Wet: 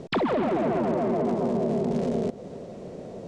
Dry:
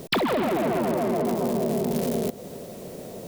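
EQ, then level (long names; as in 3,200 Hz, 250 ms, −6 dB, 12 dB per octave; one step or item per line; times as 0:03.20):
low-pass filter 7,600 Hz 24 dB per octave
high-shelf EQ 2,400 Hz −11.5 dB
0.0 dB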